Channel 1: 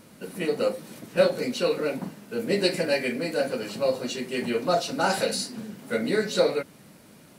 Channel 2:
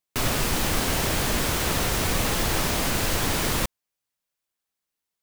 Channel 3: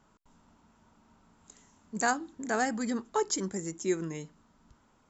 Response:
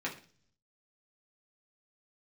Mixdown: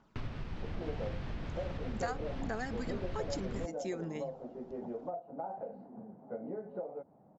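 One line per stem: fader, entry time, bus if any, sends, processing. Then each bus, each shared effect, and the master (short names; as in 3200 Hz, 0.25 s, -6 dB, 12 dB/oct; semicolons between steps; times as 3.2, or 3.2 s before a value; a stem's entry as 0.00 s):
-1.5 dB, 0.40 s, no bus, no send, ladder low-pass 850 Hz, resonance 65%; compressor 16:1, threshold -35 dBFS, peak gain reduction 15.5 dB
-10.5 dB, 0.00 s, bus A, no send, tone controls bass +11 dB, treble -13 dB; AGC; auto duck -12 dB, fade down 0.50 s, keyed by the third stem
-3.0 dB, 0.00 s, bus A, no send, notches 50/100/150 Hz; phaser 1.2 Hz, delay 1.6 ms, feedback 39%
bus A: 0.0 dB, LPF 5500 Hz 24 dB/oct; compressor 3:1, threshold -36 dBFS, peak gain reduction 9.5 dB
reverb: off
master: dry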